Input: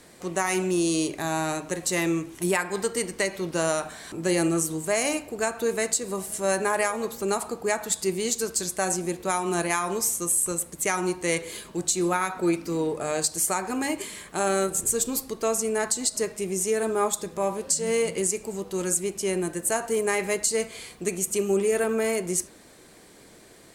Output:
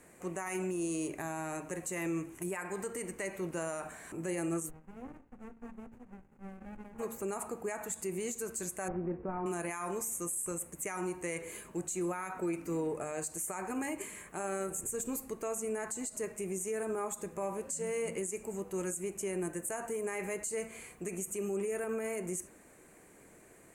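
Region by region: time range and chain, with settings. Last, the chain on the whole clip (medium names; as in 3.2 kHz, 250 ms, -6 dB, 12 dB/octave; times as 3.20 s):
4.69–6.98 s: formants flattened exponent 0.3 + two resonant band-passes 440 Hz, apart 1.6 oct + sliding maximum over 65 samples
8.88–9.46 s: CVSD coder 32 kbps + Gaussian low-pass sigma 4.9 samples + tilt EQ -1.5 dB/octave
whole clip: high-order bell 4.2 kHz -13.5 dB 1 oct; de-hum 113.3 Hz, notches 2; peak limiter -21 dBFS; trim -6.5 dB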